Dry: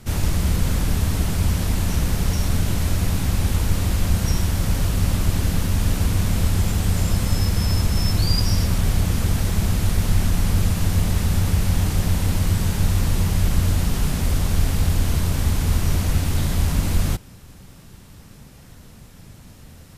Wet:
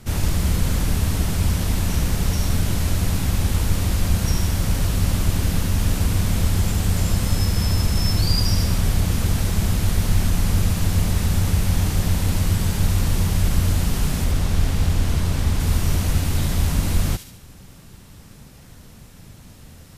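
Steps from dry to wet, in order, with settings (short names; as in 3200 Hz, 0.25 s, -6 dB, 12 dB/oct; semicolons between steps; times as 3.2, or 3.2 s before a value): 14.24–15.6 high shelf 8000 Hz -7.5 dB; thin delay 72 ms, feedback 50%, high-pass 2600 Hz, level -6.5 dB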